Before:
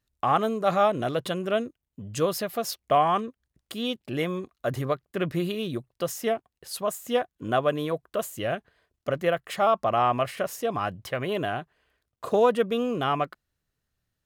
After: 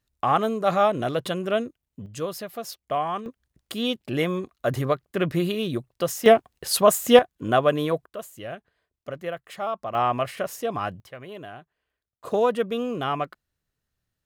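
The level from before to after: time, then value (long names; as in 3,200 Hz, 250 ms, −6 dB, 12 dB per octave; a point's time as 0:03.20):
+1.5 dB
from 0:02.06 −5 dB
from 0:03.26 +3.5 dB
from 0:06.26 +11.5 dB
from 0:07.19 +4 dB
from 0:08.06 −7 dB
from 0:09.95 0 dB
from 0:11.00 −11 dB
from 0:12.25 −1 dB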